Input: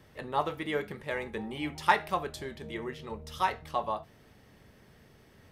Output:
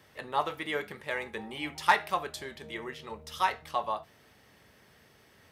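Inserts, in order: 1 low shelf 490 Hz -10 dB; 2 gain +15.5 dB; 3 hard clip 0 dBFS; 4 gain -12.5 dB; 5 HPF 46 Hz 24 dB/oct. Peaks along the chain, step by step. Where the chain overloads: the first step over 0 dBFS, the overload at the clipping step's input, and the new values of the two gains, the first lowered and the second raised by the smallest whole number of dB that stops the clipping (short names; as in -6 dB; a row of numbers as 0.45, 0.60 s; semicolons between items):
-11.0, +4.5, 0.0, -12.5, -11.5 dBFS; step 2, 4.5 dB; step 2 +10.5 dB, step 4 -7.5 dB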